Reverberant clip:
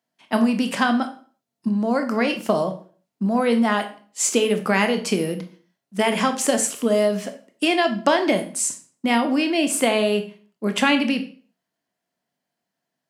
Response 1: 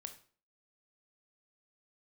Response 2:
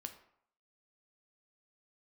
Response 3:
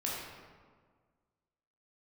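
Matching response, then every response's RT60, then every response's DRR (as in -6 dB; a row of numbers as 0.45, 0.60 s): 1; 0.45, 0.65, 1.7 s; 7.0, 6.0, -5.5 dB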